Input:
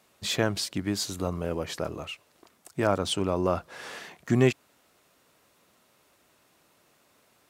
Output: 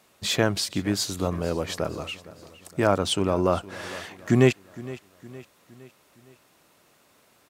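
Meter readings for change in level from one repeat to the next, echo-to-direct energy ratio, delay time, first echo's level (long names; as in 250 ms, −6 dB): −6.0 dB, −17.5 dB, 463 ms, −18.5 dB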